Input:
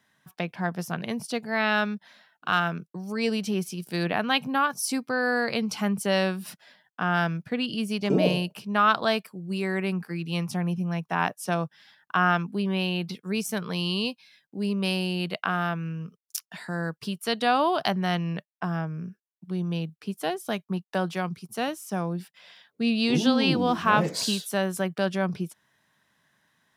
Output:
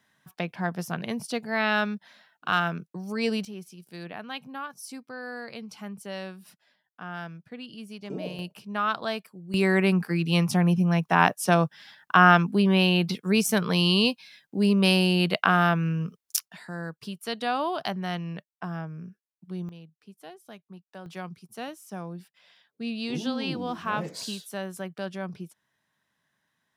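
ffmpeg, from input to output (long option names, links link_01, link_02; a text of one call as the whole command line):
ffmpeg -i in.wav -af "asetnsamples=nb_out_samples=441:pad=0,asendcmd='3.45 volume volume -12.5dB;8.39 volume volume -6dB;9.54 volume volume 6dB;16.48 volume volume -5dB;19.69 volume volume -16.5dB;21.06 volume volume -8dB',volume=-0.5dB" out.wav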